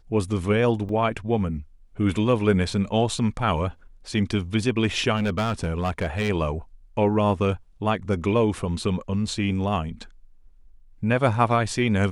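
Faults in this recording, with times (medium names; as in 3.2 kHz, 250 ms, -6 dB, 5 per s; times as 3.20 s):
0.89 s: dropout 2.5 ms
5.16–6.30 s: clipped -20 dBFS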